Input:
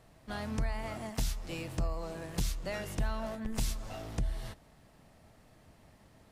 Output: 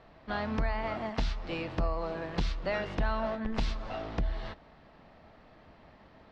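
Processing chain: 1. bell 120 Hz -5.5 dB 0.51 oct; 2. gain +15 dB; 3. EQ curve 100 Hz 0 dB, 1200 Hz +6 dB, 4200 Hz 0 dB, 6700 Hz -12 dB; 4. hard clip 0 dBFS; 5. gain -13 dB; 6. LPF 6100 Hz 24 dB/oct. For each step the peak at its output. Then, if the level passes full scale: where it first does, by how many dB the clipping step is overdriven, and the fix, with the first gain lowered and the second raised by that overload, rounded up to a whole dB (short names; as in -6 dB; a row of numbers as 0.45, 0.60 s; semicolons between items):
-22.0, -7.0, -4.5, -4.5, -17.5, -17.5 dBFS; no overload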